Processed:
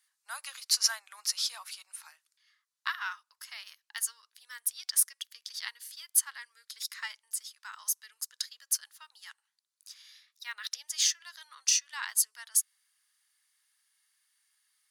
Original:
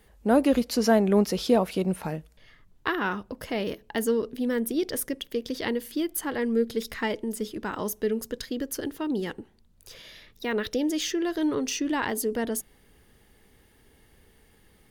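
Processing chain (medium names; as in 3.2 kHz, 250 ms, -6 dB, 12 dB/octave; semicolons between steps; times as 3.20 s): steep high-pass 1.1 kHz 36 dB/octave; high-order bell 6.7 kHz +9.5 dB; upward expansion 1.5:1, over -48 dBFS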